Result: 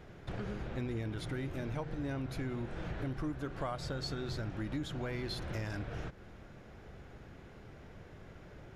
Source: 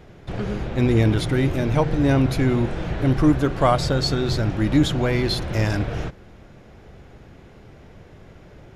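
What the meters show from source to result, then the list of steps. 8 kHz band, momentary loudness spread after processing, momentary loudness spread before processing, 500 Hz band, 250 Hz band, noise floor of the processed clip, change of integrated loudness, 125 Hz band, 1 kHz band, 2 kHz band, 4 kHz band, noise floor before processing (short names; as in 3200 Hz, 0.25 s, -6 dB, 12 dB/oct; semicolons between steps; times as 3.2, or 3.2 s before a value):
-17.0 dB, 15 LU, 9 LU, -18.0 dB, -19.0 dB, -54 dBFS, -18.5 dB, -18.0 dB, -18.5 dB, -15.0 dB, -17.0 dB, -47 dBFS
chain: bell 1500 Hz +3.5 dB 0.77 oct; compressor 4:1, threshold -30 dBFS, peak gain reduction 15.5 dB; gain -7 dB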